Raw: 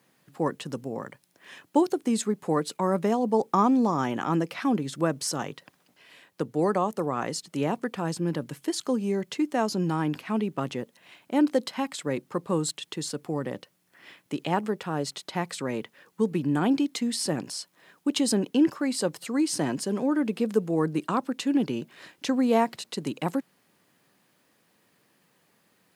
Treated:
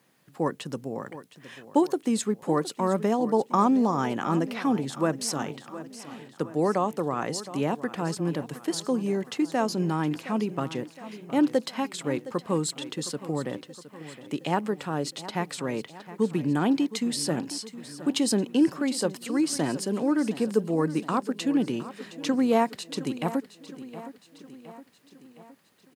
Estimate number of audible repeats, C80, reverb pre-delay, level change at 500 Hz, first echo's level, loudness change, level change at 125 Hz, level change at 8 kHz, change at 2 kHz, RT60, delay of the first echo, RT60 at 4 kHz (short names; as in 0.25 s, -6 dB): 4, none, none, 0.0 dB, -15.0 dB, 0.0 dB, 0.0 dB, 0.0 dB, 0.0 dB, none, 0.715 s, none